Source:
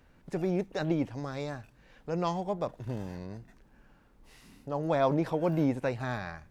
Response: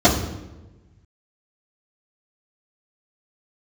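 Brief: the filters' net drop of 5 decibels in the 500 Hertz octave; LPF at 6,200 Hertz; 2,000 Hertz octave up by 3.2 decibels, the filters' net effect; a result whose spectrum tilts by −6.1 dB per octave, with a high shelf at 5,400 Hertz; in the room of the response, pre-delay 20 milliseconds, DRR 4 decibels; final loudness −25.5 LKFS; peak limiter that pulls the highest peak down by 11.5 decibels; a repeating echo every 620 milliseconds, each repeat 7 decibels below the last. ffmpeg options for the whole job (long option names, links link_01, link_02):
-filter_complex "[0:a]lowpass=6200,equalizer=frequency=500:width_type=o:gain=-7,equalizer=frequency=2000:width_type=o:gain=4,highshelf=frequency=5400:gain=6.5,alimiter=level_in=5dB:limit=-24dB:level=0:latency=1,volume=-5dB,aecho=1:1:620|1240|1860|2480|3100:0.447|0.201|0.0905|0.0407|0.0183,asplit=2[link_01][link_02];[1:a]atrim=start_sample=2205,adelay=20[link_03];[link_02][link_03]afir=irnorm=-1:irlink=0,volume=-27.5dB[link_04];[link_01][link_04]amix=inputs=2:normalize=0,volume=10dB"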